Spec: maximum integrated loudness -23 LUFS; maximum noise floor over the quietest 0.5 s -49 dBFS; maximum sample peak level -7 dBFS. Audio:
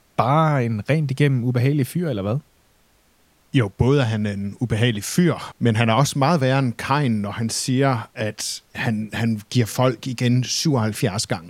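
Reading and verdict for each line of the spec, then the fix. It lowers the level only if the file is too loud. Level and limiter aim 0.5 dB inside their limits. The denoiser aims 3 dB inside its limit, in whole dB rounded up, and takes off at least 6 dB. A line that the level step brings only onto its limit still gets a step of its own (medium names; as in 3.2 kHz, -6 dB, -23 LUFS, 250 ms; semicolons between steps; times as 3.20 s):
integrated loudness -21.0 LUFS: fail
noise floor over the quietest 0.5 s -59 dBFS: pass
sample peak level -2.0 dBFS: fail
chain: trim -2.5 dB; peak limiter -7.5 dBFS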